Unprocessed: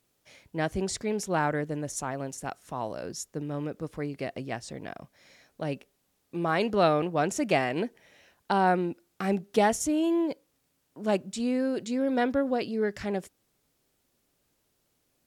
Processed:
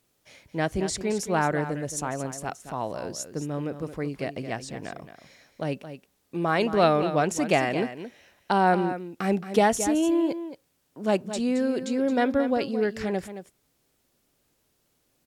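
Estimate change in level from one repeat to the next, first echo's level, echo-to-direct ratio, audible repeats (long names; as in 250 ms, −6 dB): repeats not evenly spaced, −11.0 dB, −11.0 dB, 1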